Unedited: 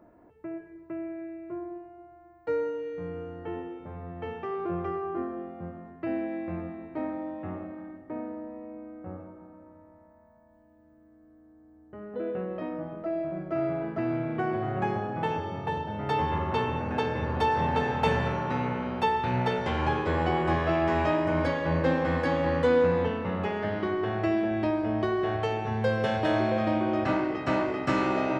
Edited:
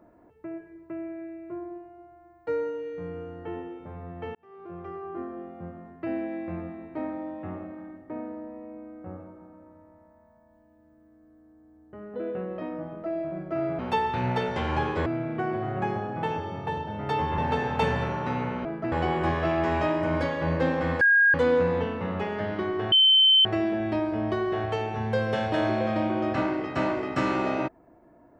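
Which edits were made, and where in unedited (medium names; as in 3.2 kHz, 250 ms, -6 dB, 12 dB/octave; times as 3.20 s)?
4.35–6.10 s: fade in equal-power
13.79–14.06 s: swap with 18.89–20.16 s
16.38–17.62 s: delete
22.25–22.58 s: bleep 1.63 kHz -15.5 dBFS
24.16 s: add tone 3.08 kHz -14.5 dBFS 0.53 s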